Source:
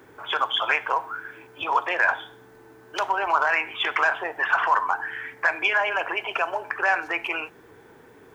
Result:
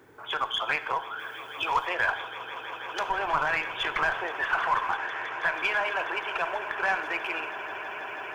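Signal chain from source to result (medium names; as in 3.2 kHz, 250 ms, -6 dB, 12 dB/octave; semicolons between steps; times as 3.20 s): 1.19–1.87 s: treble shelf 2.1 kHz +9.5 dB; 4.96–5.54 s: steep low-pass 3.1 kHz; echo with a slow build-up 162 ms, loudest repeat 8, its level -18 dB; in parallel at -5 dB: one-sided clip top -23 dBFS; 3.09–4.26 s: on the sum: bass shelf 120 Hz +11.5 dB; on a send at -15 dB: reverberation, pre-delay 3 ms; on the sum: trim -8.5 dB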